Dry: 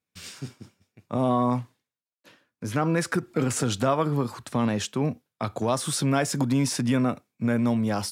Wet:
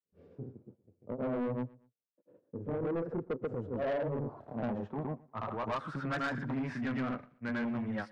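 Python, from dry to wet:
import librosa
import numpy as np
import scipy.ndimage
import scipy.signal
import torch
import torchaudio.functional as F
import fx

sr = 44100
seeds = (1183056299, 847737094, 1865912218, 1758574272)

p1 = fx.filter_sweep_lowpass(x, sr, from_hz=480.0, to_hz=1800.0, start_s=3.67, end_s=6.55, q=3.3)
p2 = fx.granulator(p1, sr, seeds[0], grain_ms=150.0, per_s=25.0, spray_ms=100.0, spread_st=0)
p3 = 10.0 ** (-24.5 / 20.0) * np.tanh(p2 / 10.0 ** (-24.5 / 20.0))
p4 = p3 + fx.echo_feedback(p3, sr, ms=118, feedback_pct=33, wet_db=-23, dry=0)
y = p4 * librosa.db_to_amplitude(-5.0)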